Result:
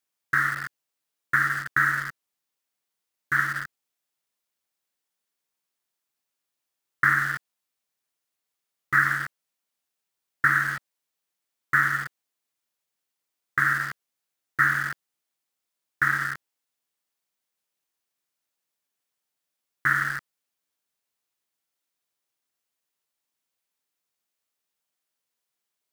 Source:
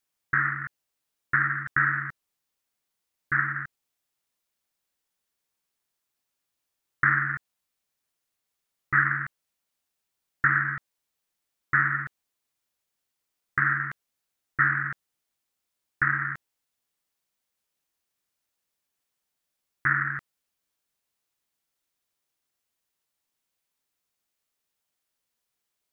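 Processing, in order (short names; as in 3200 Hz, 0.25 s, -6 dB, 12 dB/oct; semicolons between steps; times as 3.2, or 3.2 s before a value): HPF 160 Hz 6 dB/oct; in parallel at -7.5 dB: bit-crush 5-bit; on the sum: gain -1.5 dB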